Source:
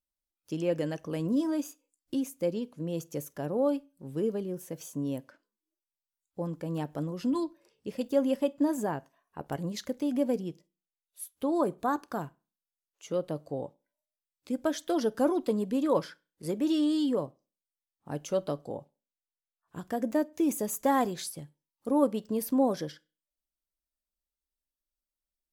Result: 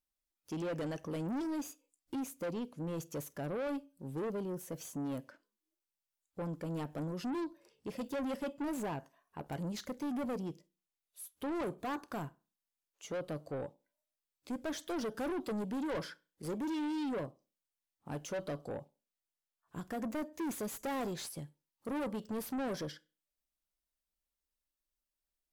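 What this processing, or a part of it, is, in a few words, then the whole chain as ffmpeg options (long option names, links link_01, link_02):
saturation between pre-emphasis and de-emphasis: -af "highshelf=frequency=4800:gain=11,asoftclip=type=tanh:threshold=-34dB,highshelf=frequency=4800:gain=-11"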